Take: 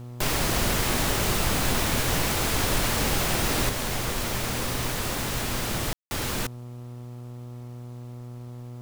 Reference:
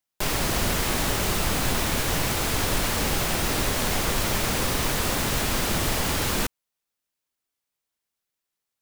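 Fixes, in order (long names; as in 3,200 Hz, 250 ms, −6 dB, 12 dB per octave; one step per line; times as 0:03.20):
hum removal 121.6 Hz, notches 11
ambience match 0:05.93–0:06.11
downward expander −31 dBFS, range −21 dB
level 0 dB, from 0:03.69 +4 dB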